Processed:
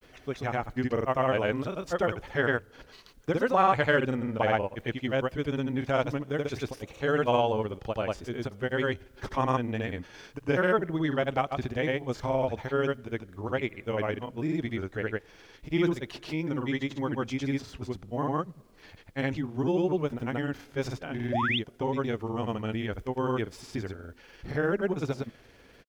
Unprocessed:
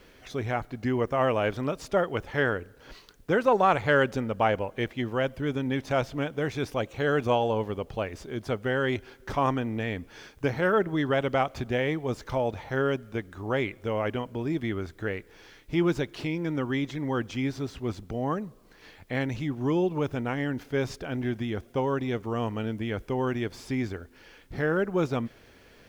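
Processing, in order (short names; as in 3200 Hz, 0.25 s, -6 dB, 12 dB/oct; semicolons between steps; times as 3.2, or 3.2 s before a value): grains, grains 20/s, pitch spread up and down by 0 st; painted sound rise, 21.32–21.59, 520–3800 Hz -28 dBFS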